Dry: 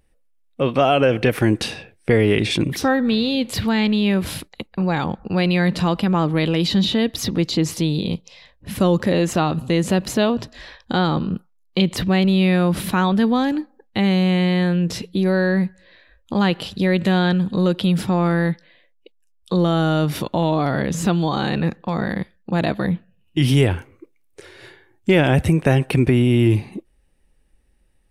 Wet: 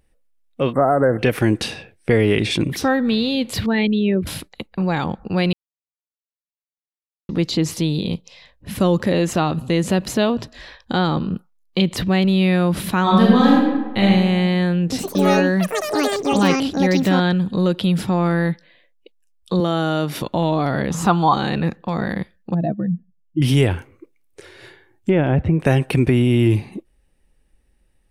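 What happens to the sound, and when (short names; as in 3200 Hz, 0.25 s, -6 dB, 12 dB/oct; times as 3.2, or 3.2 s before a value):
0.73–1.19 spectral delete 2100–7400 Hz
3.66–4.27 formant sharpening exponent 2
5.53–7.29 mute
13.02–14.02 reverb throw, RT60 1.2 s, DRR -4.5 dB
14.81–18.22 echoes that change speed 0.113 s, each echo +7 st, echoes 3
19.6–20.22 Bessel high-pass 200 Hz
20.9–21.34 band shelf 1000 Hz +12 dB 1.1 oct
22.54–23.42 spectral contrast raised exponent 2.3
25.09–25.6 tape spacing loss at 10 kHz 39 dB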